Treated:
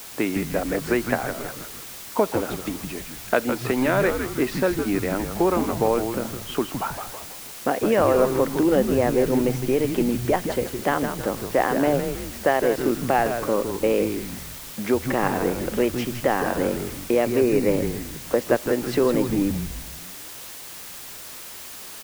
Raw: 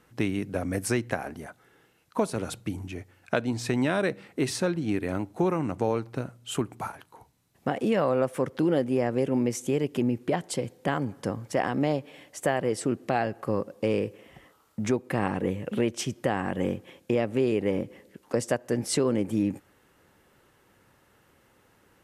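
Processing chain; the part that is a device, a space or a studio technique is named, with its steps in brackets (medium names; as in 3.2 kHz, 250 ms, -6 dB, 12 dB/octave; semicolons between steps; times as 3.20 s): wax cylinder (band-pass 280–2500 Hz; wow and flutter; white noise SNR 15 dB); 17.24–17.71 s: band-stop 3.2 kHz, Q 6.6; frequency-shifting echo 160 ms, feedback 45%, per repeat -120 Hz, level -7 dB; trim +6.5 dB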